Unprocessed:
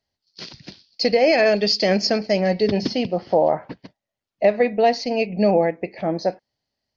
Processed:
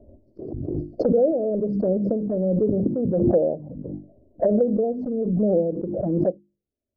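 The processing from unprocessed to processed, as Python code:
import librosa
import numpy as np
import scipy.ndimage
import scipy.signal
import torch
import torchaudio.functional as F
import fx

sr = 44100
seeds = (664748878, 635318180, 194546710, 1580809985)

y = scipy.signal.sosfilt(scipy.signal.ellip(4, 1.0, 60, 560.0, 'lowpass', fs=sr, output='sos'), x)
y = fx.env_flanger(y, sr, rest_ms=3.2, full_db=-17.5)
y = fx.hum_notches(y, sr, base_hz=50, count=7)
y = fx.hpss(y, sr, part='harmonic', gain_db=-5)
y = fx.pre_swell(y, sr, db_per_s=26.0)
y = y * 10.0 ** (3.5 / 20.0)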